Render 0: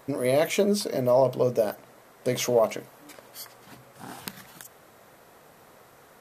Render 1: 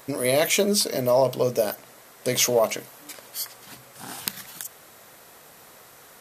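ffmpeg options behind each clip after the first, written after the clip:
ffmpeg -i in.wav -af "highshelf=frequency=2100:gain=11" out.wav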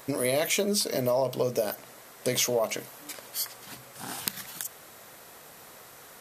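ffmpeg -i in.wav -af "acompressor=threshold=-24dB:ratio=3" out.wav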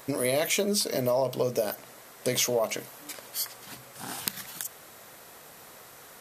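ffmpeg -i in.wav -af anull out.wav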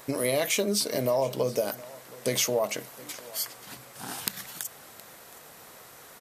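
ffmpeg -i in.wav -af "aecho=1:1:719:0.0944" out.wav

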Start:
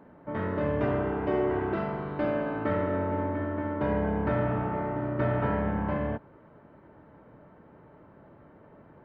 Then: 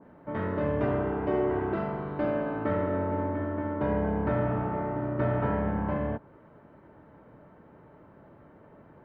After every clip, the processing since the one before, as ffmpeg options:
ffmpeg -i in.wav -af "adynamicequalizer=threshold=0.00631:dfrequency=1600:dqfactor=0.7:tfrequency=1600:tqfactor=0.7:attack=5:release=100:ratio=0.375:range=2:mode=cutabove:tftype=highshelf" out.wav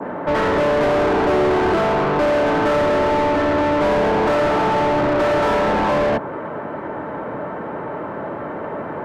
ffmpeg -i in.wav -filter_complex "[0:a]acrossover=split=210|490[link_01][link_02][link_03];[link_01]aeval=exprs='0.0178*(abs(mod(val(0)/0.0178+3,4)-2)-1)':channel_layout=same[link_04];[link_04][link_02][link_03]amix=inputs=3:normalize=0,asplit=2[link_05][link_06];[link_06]highpass=frequency=720:poles=1,volume=33dB,asoftclip=type=tanh:threshold=-16.5dB[link_07];[link_05][link_07]amix=inputs=2:normalize=0,lowpass=frequency=1300:poles=1,volume=-6dB,volume=6.5dB" out.wav

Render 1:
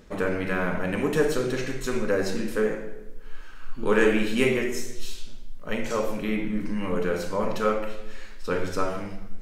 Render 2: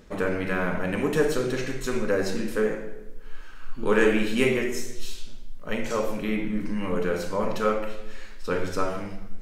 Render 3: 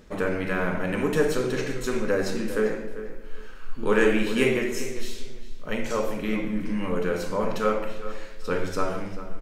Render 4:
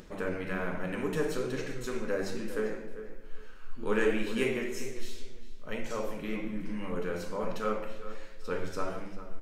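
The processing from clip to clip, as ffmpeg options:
ffmpeg -i in.wav -af anull out.wav
ffmpeg -i in.wav -filter_complex "[0:a]asplit=2[link_01][link_02];[link_02]adelay=397,lowpass=frequency=3700:poles=1,volume=-13dB,asplit=2[link_03][link_04];[link_04]adelay=397,lowpass=frequency=3700:poles=1,volume=0.23,asplit=2[link_05][link_06];[link_06]adelay=397,lowpass=frequency=3700:poles=1,volume=0.23[link_07];[link_01][link_03][link_05][link_07]amix=inputs=4:normalize=0" out.wav
ffmpeg -i in.wav -af "flanger=delay=5.2:depth=8:regen=67:speed=1.2:shape=triangular,acompressor=mode=upward:threshold=-39dB:ratio=2.5,bandreject=frequency=50:width_type=h:width=6,bandreject=frequency=100:width_type=h:width=6,volume=-3.5dB" out.wav

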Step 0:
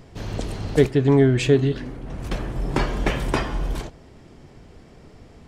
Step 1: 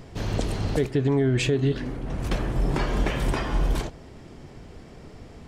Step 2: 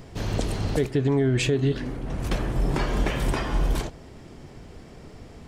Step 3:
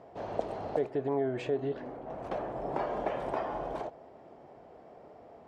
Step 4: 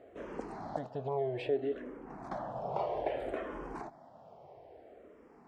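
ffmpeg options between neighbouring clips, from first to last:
ffmpeg -i in.wav -af "alimiter=limit=-16dB:level=0:latency=1:release=226,volume=2.5dB" out.wav
ffmpeg -i in.wav -af "highshelf=frequency=8000:gain=4" out.wav
ffmpeg -i in.wav -af "bandpass=frequency=680:width_type=q:width=2.5:csg=0,volume=3dB" out.wav
ffmpeg -i in.wav -filter_complex "[0:a]asplit=2[link_01][link_02];[link_02]afreqshift=-0.61[link_03];[link_01][link_03]amix=inputs=2:normalize=1" out.wav

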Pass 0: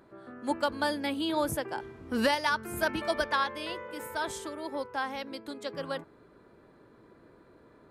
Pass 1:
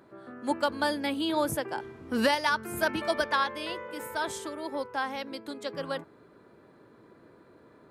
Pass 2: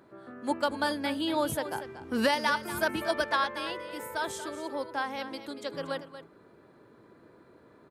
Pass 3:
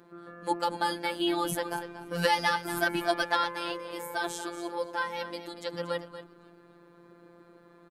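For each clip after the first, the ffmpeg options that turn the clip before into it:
ffmpeg -i in.wav -af "highpass=86,volume=1.5dB" out.wav
ffmpeg -i in.wav -af "aecho=1:1:235:0.251,volume=-1dB" out.wav
ffmpeg -i in.wav -filter_complex "[0:a]asplit=4[link_01][link_02][link_03][link_04];[link_02]adelay=264,afreqshift=-87,volume=-24dB[link_05];[link_03]adelay=528,afreqshift=-174,volume=-30dB[link_06];[link_04]adelay=792,afreqshift=-261,volume=-36dB[link_07];[link_01][link_05][link_06][link_07]amix=inputs=4:normalize=0,afftfilt=real='hypot(re,im)*cos(PI*b)':imag='0':win_size=1024:overlap=0.75,volume=4.5dB" out.wav

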